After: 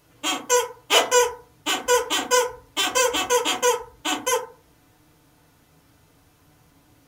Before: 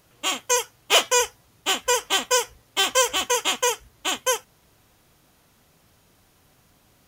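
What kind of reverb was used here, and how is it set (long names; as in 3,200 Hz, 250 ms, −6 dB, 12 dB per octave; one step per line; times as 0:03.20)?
feedback delay network reverb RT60 0.38 s, low-frequency decay 1.3×, high-frequency decay 0.35×, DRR −0.5 dB
level −2 dB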